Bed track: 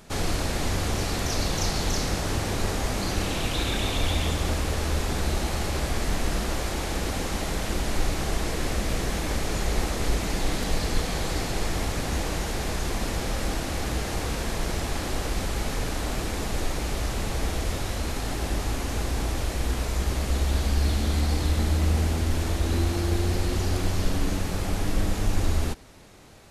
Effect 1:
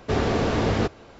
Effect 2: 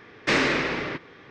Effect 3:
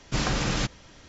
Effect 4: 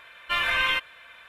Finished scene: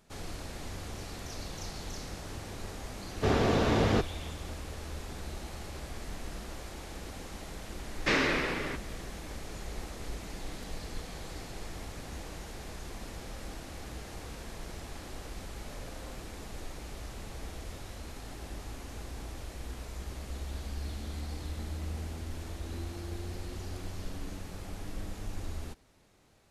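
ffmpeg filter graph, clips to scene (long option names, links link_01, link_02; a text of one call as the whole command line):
ffmpeg -i bed.wav -i cue0.wav -i cue1.wav -i cue2.wav -i cue3.wav -filter_complex "[0:a]volume=-14.5dB[link_01];[4:a]asuperpass=centerf=570:order=4:qfactor=2.7[link_02];[1:a]atrim=end=1.19,asetpts=PTS-STARTPTS,volume=-3.5dB,afade=type=in:duration=0.004:curve=hsin,afade=type=out:start_time=1.186:duration=0.004:curve=hsin,adelay=3140[link_03];[2:a]atrim=end=1.3,asetpts=PTS-STARTPTS,volume=-5.5dB,afade=type=in:duration=0.004:curve=hsin,afade=type=out:start_time=1.296:duration=0.004:curve=hsin,adelay=7790[link_04];[link_02]atrim=end=1.28,asetpts=PTS-STARTPTS,volume=-10.5dB,afade=type=in:duration=0.004:curve=hsin,afade=type=out:start_time=1.276:duration=0.004:curve=hsin,adelay=15390[link_05];[link_01][link_03][link_04][link_05]amix=inputs=4:normalize=0" out.wav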